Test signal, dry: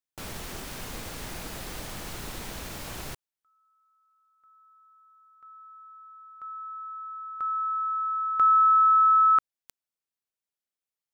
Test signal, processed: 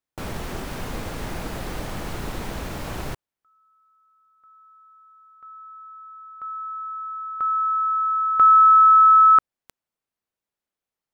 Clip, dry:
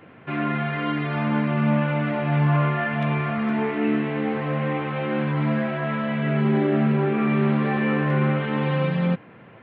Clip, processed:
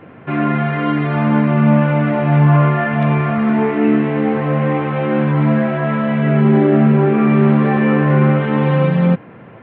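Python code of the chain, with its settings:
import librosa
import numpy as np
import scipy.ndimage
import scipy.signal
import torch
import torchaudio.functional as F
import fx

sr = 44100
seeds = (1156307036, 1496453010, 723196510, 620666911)

y = fx.high_shelf(x, sr, hz=2400.0, db=-11.0)
y = y * 10.0 ** (9.0 / 20.0)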